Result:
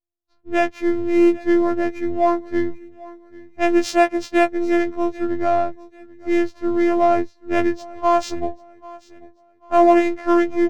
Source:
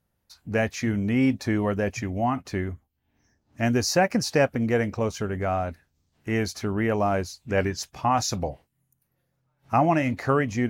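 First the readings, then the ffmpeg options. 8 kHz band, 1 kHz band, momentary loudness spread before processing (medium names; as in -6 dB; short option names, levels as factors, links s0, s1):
-6.5 dB, +6.0 dB, 8 LU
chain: -filter_complex "[0:a]agate=range=0.1:threshold=0.00158:ratio=16:detection=peak,equalizer=f=1300:t=o:w=1.2:g=-4,acrossover=split=7400[s0][s1];[s0]acrusher=bits=5:mode=log:mix=0:aa=0.000001[s2];[s2][s1]amix=inputs=2:normalize=0,afftfilt=real='hypot(re,im)*cos(PI*b)':imag='0':win_size=512:overlap=0.75,adynamicsmooth=sensitivity=2.5:basefreq=820,asplit=2[s3][s4];[s4]aecho=0:1:790|1580|2370:0.0841|0.0294|0.0103[s5];[s3][s5]amix=inputs=2:normalize=0,afftfilt=real='re*2*eq(mod(b,4),0)':imag='im*2*eq(mod(b,4),0)':win_size=2048:overlap=0.75,volume=2.51"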